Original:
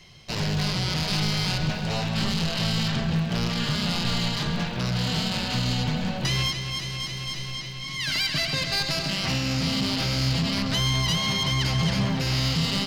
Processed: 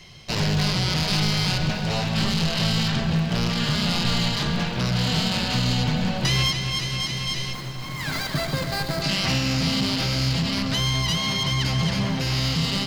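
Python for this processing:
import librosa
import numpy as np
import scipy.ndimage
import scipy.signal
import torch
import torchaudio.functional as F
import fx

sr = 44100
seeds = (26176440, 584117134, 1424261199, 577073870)

y = fx.median_filter(x, sr, points=15, at=(7.53, 9.02))
y = fx.rider(y, sr, range_db=3, speed_s=2.0)
y = fx.echo_diffused(y, sr, ms=1188, feedback_pct=45, wet_db=-16)
y = y * librosa.db_to_amplitude(2.5)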